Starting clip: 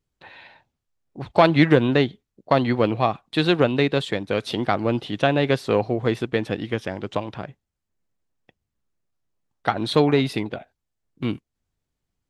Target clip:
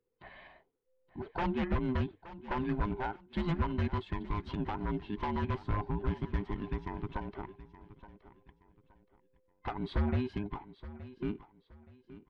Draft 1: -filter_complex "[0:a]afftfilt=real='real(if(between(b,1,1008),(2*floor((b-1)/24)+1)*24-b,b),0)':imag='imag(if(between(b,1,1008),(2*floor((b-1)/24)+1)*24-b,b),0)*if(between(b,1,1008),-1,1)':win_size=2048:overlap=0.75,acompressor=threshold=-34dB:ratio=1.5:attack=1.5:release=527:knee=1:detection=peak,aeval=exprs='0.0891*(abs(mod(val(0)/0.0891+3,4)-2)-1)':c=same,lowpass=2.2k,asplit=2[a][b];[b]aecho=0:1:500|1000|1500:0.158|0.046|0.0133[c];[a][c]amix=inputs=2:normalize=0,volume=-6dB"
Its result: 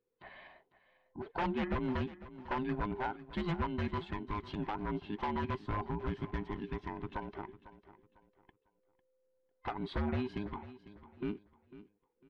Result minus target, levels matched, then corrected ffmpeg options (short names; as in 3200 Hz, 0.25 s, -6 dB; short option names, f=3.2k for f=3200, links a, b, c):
echo 0.372 s early; 125 Hz band -2.5 dB
-filter_complex "[0:a]afftfilt=real='real(if(between(b,1,1008),(2*floor((b-1)/24)+1)*24-b,b),0)':imag='imag(if(between(b,1,1008),(2*floor((b-1)/24)+1)*24-b,b),0)*if(between(b,1,1008),-1,1)':win_size=2048:overlap=0.75,acompressor=threshold=-34dB:ratio=1.5:attack=1.5:release=527:knee=1:detection=peak,aeval=exprs='0.0891*(abs(mod(val(0)/0.0891+3,4)-2)-1)':c=same,lowpass=2.2k,lowshelf=f=140:g=8,asplit=2[a][b];[b]aecho=0:1:872|1744|2616:0.158|0.046|0.0133[c];[a][c]amix=inputs=2:normalize=0,volume=-6dB"